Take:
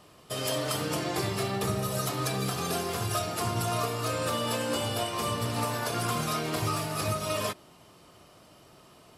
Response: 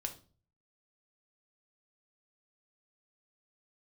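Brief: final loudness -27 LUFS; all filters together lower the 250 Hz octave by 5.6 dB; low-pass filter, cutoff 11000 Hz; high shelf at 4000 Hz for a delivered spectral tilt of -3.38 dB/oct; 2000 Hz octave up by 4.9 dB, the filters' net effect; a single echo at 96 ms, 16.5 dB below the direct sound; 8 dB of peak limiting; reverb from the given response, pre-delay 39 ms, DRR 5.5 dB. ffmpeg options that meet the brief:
-filter_complex "[0:a]lowpass=11k,equalizer=f=250:t=o:g=-8.5,equalizer=f=2k:t=o:g=4.5,highshelf=f=4k:g=8,alimiter=limit=-21.5dB:level=0:latency=1,aecho=1:1:96:0.15,asplit=2[a][b];[1:a]atrim=start_sample=2205,adelay=39[c];[b][c]afir=irnorm=-1:irlink=0,volume=-4.5dB[d];[a][d]amix=inputs=2:normalize=0,volume=2dB"

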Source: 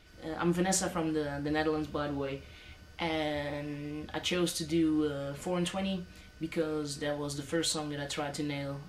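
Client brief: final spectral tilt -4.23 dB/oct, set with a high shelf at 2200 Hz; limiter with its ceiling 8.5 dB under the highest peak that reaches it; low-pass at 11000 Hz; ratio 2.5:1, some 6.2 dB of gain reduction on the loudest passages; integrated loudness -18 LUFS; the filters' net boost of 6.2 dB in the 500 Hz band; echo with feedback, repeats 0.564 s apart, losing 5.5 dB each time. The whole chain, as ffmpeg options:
-af "lowpass=11k,equalizer=f=500:t=o:g=7,highshelf=f=2.2k:g=5.5,acompressor=threshold=-30dB:ratio=2.5,alimiter=level_in=0.5dB:limit=-24dB:level=0:latency=1,volume=-0.5dB,aecho=1:1:564|1128|1692|2256|2820|3384|3948:0.531|0.281|0.149|0.079|0.0419|0.0222|0.0118,volume=15.5dB"

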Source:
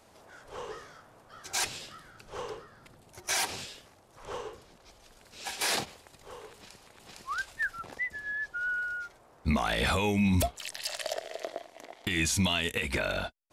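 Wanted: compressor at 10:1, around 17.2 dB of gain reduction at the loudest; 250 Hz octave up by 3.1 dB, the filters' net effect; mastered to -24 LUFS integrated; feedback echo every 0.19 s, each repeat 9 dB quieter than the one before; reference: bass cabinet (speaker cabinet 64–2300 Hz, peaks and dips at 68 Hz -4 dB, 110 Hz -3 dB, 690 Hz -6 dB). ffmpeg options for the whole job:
-af "equalizer=f=250:t=o:g=4.5,acompressor=threshold=-38dB:ratio=10,highpass=f=64:w=0.5412,highpass=f=64:w=1.3066,equalizer=f=68:t=q:w=4:g=-4,equalizer=f=110:t=q:w=4:g=-3,equalizer=f=690:t=q:w=4:g=-6,lowpass=f=2.3k:w=0.5412,lowpass=f=2.3k:w=1.3066,aecho=1:1:190|380|570|760:0.355|0.124|0.0435|0.0152,volume=20.5dB"

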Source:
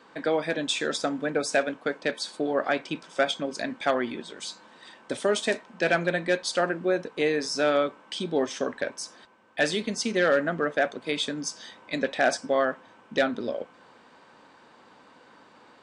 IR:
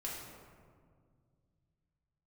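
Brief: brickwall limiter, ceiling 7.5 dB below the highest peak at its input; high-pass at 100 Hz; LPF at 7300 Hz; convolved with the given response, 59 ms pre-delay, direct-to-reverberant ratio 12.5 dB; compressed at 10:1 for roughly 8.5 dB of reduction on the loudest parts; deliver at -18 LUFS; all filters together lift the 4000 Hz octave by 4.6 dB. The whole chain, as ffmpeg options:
-filter_complex "[0:a]highpass=100,lowpass=7.3k,equalizer=f=4k:t=o:g=6,acompressor=threshold=-26dB:ratio=10,alimiter=limit=-21.5dB:level=0:latency=1,asplit=2[a][b];[1:a]atrim=start_sample=2205,adelay=59[c];[b][c]afir=irnorm=-1:irlink=0,volume=-13dB[d];[a][d]amix=inputs=2:normalize=0,volume=15.5dB"

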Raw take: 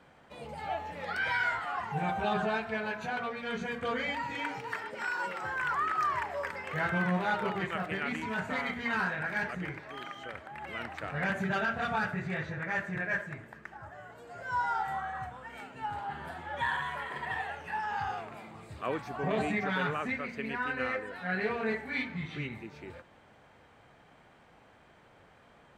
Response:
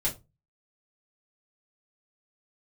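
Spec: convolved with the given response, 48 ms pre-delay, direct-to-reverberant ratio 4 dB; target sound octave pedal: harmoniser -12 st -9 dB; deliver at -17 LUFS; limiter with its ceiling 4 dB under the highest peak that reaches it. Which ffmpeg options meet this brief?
-filter_complex "[0:a]alimiter=level_in=0.5dB:limit=-24dB:level=0:latency=1,volume=-0.5dB,asplit=2[a][b];[1:a]atrim=start_sample=2205,adelay=48[c];[b][c]afir=irnorm=-1:irlink=0,volume=-10.5dB[d];[a][d]amix=inputs=2:normalize=0,asplit=2[e][f];[f]asetrate=22050,aresample=44100,atempo=2,volume=-9dB[g];[e][g]amix=inputs=2:normalize=0,volume=16dB"

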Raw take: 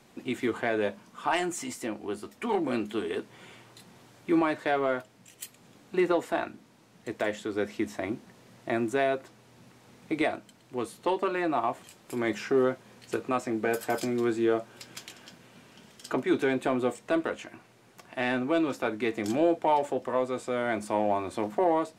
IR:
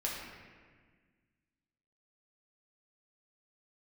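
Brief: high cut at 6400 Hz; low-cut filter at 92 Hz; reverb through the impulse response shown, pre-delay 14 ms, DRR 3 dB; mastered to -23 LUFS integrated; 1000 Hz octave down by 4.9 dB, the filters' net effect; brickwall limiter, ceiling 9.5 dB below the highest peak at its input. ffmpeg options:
-filter_complex "[0:a]highpass=92,lowpass=6.4k,equalizer=f=1k:t=o:g=-7,alimiter=level_in=1dB:limit=-24dB:level=0:latency=1,volume=-1dB,asplit=2[a][b];[1:a]atrim=start_sample=2205,adelay=14[c];[b][c]afir=irnorm=-1:irlink=0,volume=-7dB[d];[a][d]amix=inputs=2:normalize=0,volume=11.5dB"

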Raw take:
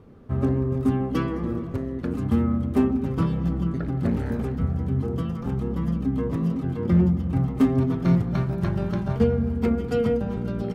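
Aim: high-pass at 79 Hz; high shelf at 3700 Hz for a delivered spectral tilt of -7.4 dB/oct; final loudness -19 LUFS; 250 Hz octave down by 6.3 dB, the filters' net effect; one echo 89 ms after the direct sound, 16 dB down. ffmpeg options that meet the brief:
-af "highpass=79,equalizer=f=250:t=o:g=-8.5,highshelf=f=3.7k:g=6.5,aecho=1:1:89:0.158,volume=10dB"

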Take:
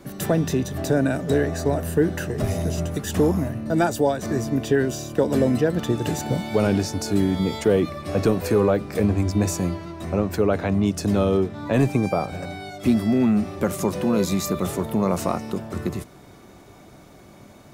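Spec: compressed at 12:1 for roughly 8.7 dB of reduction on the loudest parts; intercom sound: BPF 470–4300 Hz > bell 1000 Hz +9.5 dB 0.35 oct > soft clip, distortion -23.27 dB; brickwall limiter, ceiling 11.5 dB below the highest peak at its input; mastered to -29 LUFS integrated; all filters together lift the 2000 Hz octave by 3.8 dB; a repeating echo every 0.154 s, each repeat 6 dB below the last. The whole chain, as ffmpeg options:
-af "equalizer=f=2k:t=o:g=4.5,acompressor=threshold=-23dB:ratio=12,alimiter=limit=-22dB:level=0:latency=1,highpass=470,lowpass=4.3k,equalizer=f=1k:t=o:w=0.35:g=9.5,aecho=1:1:154|308|462|616|770|924:0.501|0.251|0.125|0.0626|0.0313|0.0157,asoftclip=threshold=-23.5dB,volume=6.5dB"

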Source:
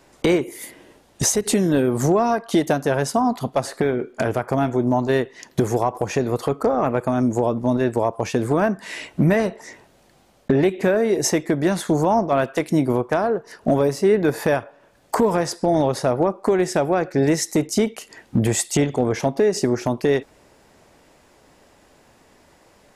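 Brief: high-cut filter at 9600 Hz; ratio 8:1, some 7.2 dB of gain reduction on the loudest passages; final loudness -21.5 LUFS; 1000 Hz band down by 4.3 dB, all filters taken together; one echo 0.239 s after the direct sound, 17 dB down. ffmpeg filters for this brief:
-af "lowpass=9.6k,equalizer=f=1k:t=o:g=-6.5,acompressor=threshold=-21dB:ratio=8,aecho=1:1:239:0.141,volume=5.5dB"

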